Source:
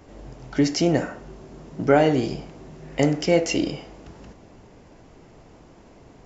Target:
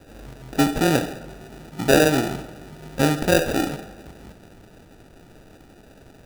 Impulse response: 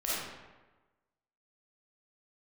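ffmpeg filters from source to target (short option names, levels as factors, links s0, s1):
-filter_complex "[0:a]acrusher=samples=41:mix=1:aa=0.000001,asplit=2[s0][s1];[1:a]atrim=start_sample=2205[s2];[s1][s2]afir=irnorm=-1:irlink=0,volume=0.106[s3];[s0][s3]amix=inputs=2:normalize=0"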